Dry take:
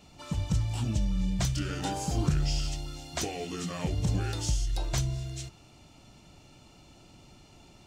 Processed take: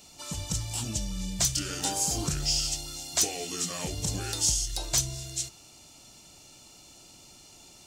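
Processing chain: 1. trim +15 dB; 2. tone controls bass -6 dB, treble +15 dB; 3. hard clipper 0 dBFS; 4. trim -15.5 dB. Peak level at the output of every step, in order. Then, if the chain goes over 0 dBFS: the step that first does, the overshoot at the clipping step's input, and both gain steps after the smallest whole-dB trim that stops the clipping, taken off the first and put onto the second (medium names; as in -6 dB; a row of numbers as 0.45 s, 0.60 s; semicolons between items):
+0.5 dBFS, +6.0 dBFS, 0.0 dBFS, -15.5 dBFS; step 1, 6.0 dB; step 1 +9 dB, step 4 -9.5 dB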